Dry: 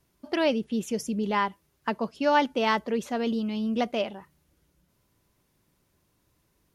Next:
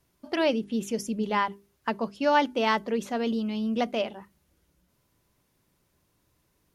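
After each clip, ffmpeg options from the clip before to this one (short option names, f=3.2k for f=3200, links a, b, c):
-af "bandreject=f=50:t=h:w=6,bandreject=f=100:t=h:w=6,bandreject=f=150:t=h:w=6,bandreject=f=200:t=h:w=6,bandreject=f=250:t=h:w=6,bandreject=f=300:t=h:w=6,bandreject=f=350:t=h:w=6,bandreject=f=400:t=h:w=6"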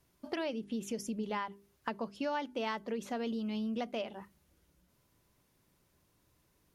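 -af "acompressor=threshold=-33dB:ratio=4,volume=-1.5dB"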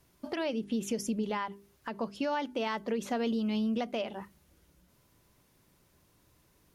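-af "alimiter=level_in=4.5dB:limit=-24dB:level=0:latency=1:release=110,volume=-4.5dB,volume=5.5dB"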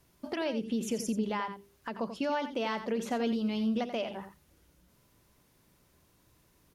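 -af "aecho=1:1:87:0.299"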